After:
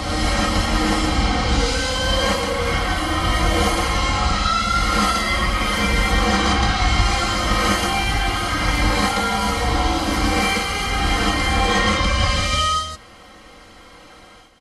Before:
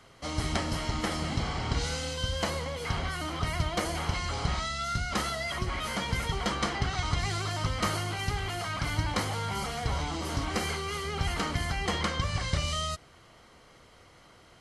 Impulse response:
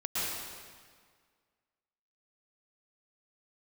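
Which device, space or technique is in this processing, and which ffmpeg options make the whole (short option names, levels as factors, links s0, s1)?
reverse reverb: -filter_complex "[0:a]aecho=1:1:3.8:0.67,areverse[s0];[1:a]atrim=start_sample=2205[s1];[s0][s1]afir=irnorm=-1:irlink=0,areverse,volume=1.58"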